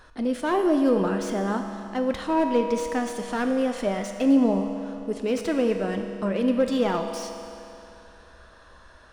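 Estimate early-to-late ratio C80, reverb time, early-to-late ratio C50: 6.5 dB, 2.9 s, 6.0 dB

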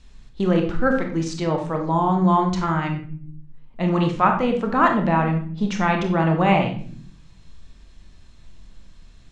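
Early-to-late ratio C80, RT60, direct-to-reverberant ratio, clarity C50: 11.0 dB, non-exponential decay, 2.5 dB, 7.0 dB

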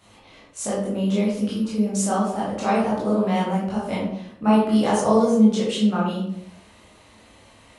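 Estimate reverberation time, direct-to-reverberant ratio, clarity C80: 0.70 s, −7.5 dB, 5.5 dB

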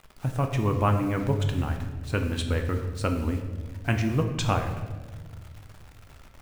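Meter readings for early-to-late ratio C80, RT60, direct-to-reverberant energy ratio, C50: 9.0 dB, 1.5 s, 4.0 dB, 7.0 dB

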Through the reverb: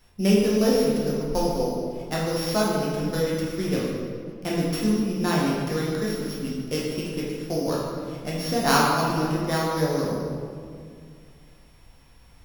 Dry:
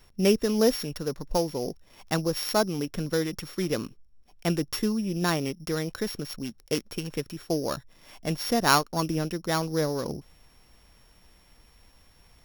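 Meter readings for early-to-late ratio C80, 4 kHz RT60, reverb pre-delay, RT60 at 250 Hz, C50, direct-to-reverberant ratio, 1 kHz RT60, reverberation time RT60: 1.5 dB, 1.3 s, 8 ms, 2.6 s, −0.5 dB, −5.5 dB, 1.9 s, 2.1 s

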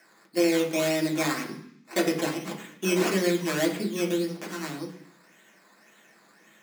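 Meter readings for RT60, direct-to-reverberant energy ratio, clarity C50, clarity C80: 0.65 s, −2.5 dB, 9.0 dB, 12.0 dB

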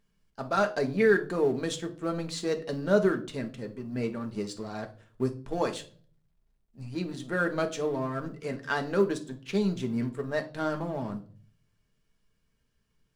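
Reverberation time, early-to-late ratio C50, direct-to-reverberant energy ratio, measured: 0.40 s, 14.0 dB, 5.0 dB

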